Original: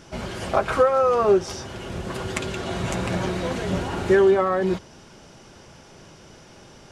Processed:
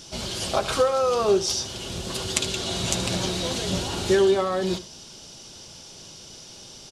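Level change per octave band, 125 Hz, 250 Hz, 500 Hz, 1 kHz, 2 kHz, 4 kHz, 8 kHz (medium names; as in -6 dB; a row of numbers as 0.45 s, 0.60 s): -2.5 dB, -2.5 dB, -2.5 dB, -4.0 dB, -3.5 dB, +9.5 dB, +10.5 dB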